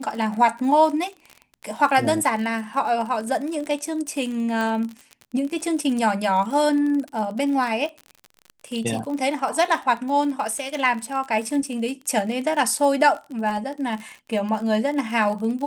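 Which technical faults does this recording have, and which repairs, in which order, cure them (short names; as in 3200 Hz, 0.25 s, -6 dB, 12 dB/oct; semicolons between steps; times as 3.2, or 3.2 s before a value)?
crackle 43/s -29 dBFS
4.61 pop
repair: de-click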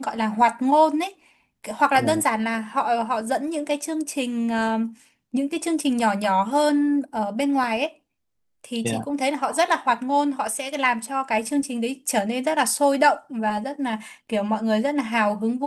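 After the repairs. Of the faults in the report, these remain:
none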